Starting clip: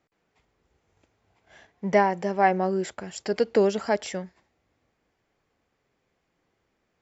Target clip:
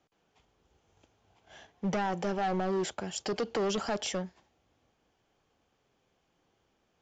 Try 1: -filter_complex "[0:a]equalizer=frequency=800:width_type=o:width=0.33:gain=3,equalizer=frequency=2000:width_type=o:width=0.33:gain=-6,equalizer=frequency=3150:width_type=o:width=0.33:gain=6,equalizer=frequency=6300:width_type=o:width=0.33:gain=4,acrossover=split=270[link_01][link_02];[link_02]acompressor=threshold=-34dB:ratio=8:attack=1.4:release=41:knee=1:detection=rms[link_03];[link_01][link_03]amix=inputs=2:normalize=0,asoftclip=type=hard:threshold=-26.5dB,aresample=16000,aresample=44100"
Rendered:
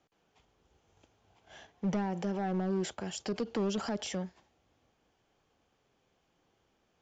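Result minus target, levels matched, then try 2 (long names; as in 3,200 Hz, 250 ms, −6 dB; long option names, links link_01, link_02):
downward compressor: peak gain reduction +9 dB
-filter_complex "[0:a]equalizer=frequency=800:width_type=o:width=0.33:gain=3,equalizer=frequency=2000:width_type=o:width=0.33:gain=-6,equalizer=frequency=3150:width_type=o:width=0.33:gain=6,equalizer=frequency=6300:width_type=o:width=0.33:gain=4,acrossover=split=270[link_01][link_02];[link_02]acompressor=threshold=-23.5dB:ratio=8:attack=1.4:release=41:knee=1:detection=rms[link_03];[link_01][link_03]amix=inputs=2:normalize=0,asoftclip=type=hard:threshold=-26.5dB,aresample=16000,aresample=44100"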